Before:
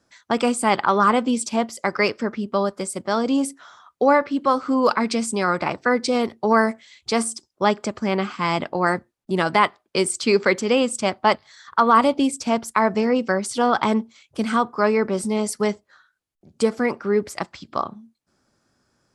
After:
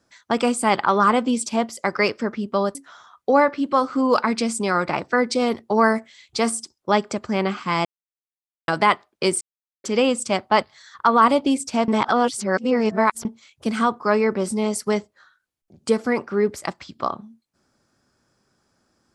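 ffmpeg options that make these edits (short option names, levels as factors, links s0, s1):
-filter_complex "[0:a]asplit=8[s0][s1][s2][s3][s4][s5][s6][s7];[s0]atrim=end=2.752[s8];[s1]atrim=start=3.478:end=8.58,asetpts=PTS-STARTPTS,afade=t=out:st=5.098:d=0.004:c=hsin[s9];[s2]atrim=start=8.58:end=9.41,asetpts=PTS-STARTPTS,volume=0[s10];[s3]atrim=start=9.41:end=10.14,asetpts=PTS-STARTPTS,afade=t=in:d=0.004:c=hsin,afade=t=out:st=0.726:d=0.004:c=hsin[s11];[s4]atrim=start=10.14:end=10.57,asetpts=PTS-STARTPTS,volume=0[s12];[s5]atrim=start=10.57:end=12.612,asetpts=PTS-STARTPTS,afade=t=in:d=0.004:c=hsin[s13];[s6]atrim=start=12.608:end=13.982,asetpts=PTS-STARTPTS,areverse[s14];[s7]atrim=start=13.978[s15];[s9][s10][s11][s12][s13]concat=n=5:v=0:a=1[s16];[s8][s16]acrossfade=d=0.004:c1=hsin:c2=hsin[s17];[s17][s14]acrossfade=d=0.004:c1=hsin:c2=hsin[s18];[s18][s15]acrossfade=d=0.004:c1=hsin:c2=hsin"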